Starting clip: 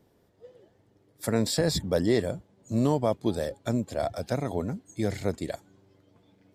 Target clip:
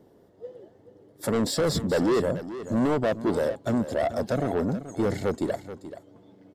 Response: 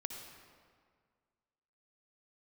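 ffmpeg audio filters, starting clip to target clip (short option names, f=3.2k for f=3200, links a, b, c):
-filter_complex "[0:a]equalizer=f=400:w=0.4:g=10,asoftclip=type=tanh:threshold=-19.5dB,bandreject=f=2.4k:w=10,asplit=2[a][b];[b]aecho=0:1:431:0.224[c];[a][c]amix=inputs=2:normalize=0"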